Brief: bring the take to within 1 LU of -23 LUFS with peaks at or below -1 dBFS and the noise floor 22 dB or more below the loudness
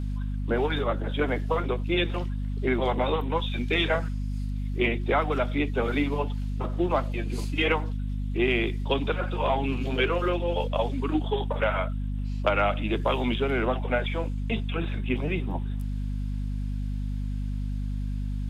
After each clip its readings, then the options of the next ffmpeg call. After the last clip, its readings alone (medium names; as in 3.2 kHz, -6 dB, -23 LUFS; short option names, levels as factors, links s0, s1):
hum 50 Hz; highest harmonic 250 Hz; hum level -27 dBFS; loudness -28.0 LUFS; peak level -9.0 dBFS; loudness target -23.0 LUFS
-> -af "bandreject=f=50:t=h:w=4,bandreject=f=100:t=h:w=4,bandreject=f=150:t=h:w=4,bandreject=f=200:t=h:w=4,bandreject=f=250:t=h:w=4"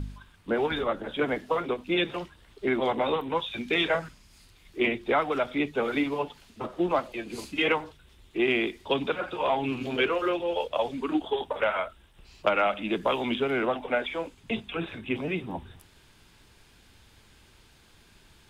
hum not found; loudness -28.5 LUFS; peak level -9.5 dBFS; loudness target -23.0 LUFS
-> -af "volume=1.88"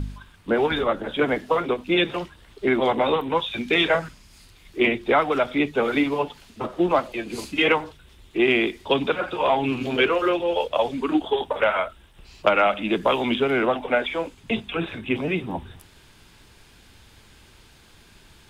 loudness -23.0 LUFS; peak level -4.5 dBFS; noise floor -53 dBFS